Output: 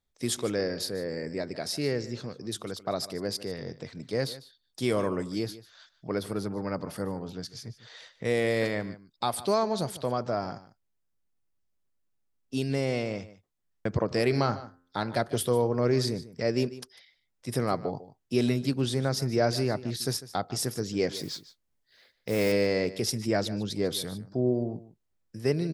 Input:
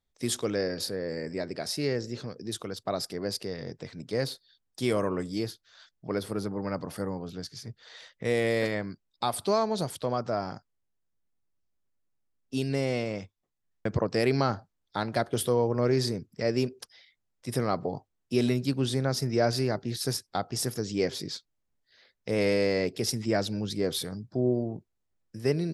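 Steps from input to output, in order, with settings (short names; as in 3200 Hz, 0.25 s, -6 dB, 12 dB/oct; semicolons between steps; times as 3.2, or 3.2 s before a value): 14.05–15.2 de-hum 87.68 Hz, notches 26; 21.16–22.52 modulation noise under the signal 18 dB; echo 0.149 s -16.5 dB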